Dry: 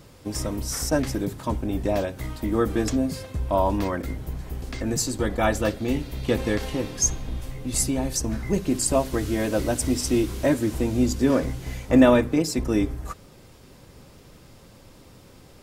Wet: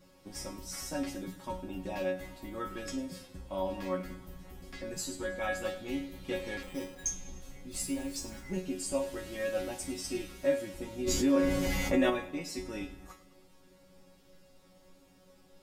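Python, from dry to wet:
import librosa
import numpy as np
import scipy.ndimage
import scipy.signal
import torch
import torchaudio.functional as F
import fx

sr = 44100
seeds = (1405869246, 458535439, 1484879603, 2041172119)

p1 = fx.dynamic_eq(x, sr, hz=2600.0, q=1.3, threshold_db=-44.0, ratio=4.0, max_db=5)
p2 = fx.rider(p1, sr, range_db=3, speed_s=0.5)
p3 = p1 + F.gain(torch.from_numpy(p2), 0.0).numpy()
p4 = fx.quant_dither(p3, sr, seeds[0], bits=6, dither='none', at=(7.71, 8.4))
p5 = fx.resonator_bank(p4, sr, root=54, chord='fifth', decay_s=0.3)
p6 = p5 + fx.echo_feedback(p5, sr, ms=104, feedback_pct=55, wet_db=-16.5, dry=0)
p7 = fx.resample_bad(p6, sr, factor=8, down='filtered', up='hold', at=(6.63, 7.06))
p8 = fx.env_flatten(p7, sr, amount_pct=70, at=(11.06, 12.09), fade=0.02)
y = F.gain(torch.from_numpy(p8), -3.0).numpy()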